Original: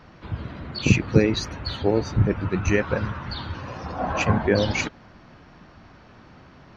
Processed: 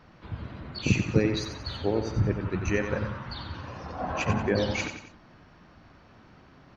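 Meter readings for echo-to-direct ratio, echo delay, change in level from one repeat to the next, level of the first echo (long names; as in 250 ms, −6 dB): −7.0 dB, 91 ms, −7.0 dB, −8.0 dB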